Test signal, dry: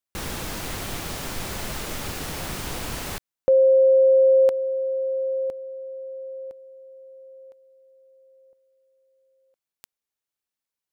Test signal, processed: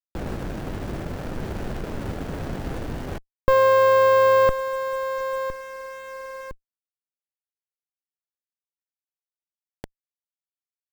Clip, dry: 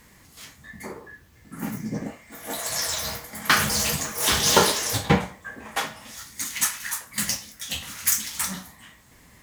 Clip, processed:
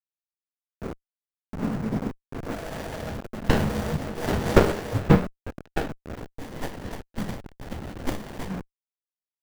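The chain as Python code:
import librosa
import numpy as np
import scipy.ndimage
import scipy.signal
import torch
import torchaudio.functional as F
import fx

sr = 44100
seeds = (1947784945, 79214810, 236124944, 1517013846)

y = fx.delta_hold(x, sr, step_db=-30.5)
y = fx.band_shelf(y, sr, hz=5500.0, db=-13.0, octaves=2.9)
y = fx.running_max(y, sr, window=33)
y = y * 10.0 ** (4.0 / 20.0)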